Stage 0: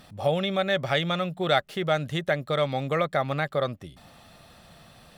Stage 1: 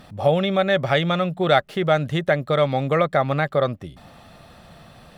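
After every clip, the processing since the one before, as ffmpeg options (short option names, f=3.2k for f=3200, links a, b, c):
-af "highshelf=f=2.8k:g=-7.5,volume=6.5dB"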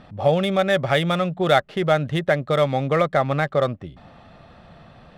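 -af "adynamicsmooth=sensitivity=5:basefreq=3.6k"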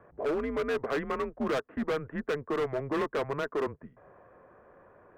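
-af "highpass=f=290:t=q:w=0.5412,highpass=f=290:t=q:w=1.307,lowpass=f=2k:t=q:w=0.5176,lowpass=f=2k:t=q:w=0.7071,lowpass=f=2k:t=q:w=1.932,afreqshift=-140,asoftclip=type=hard:threshold=-20dB,volume=-6dB"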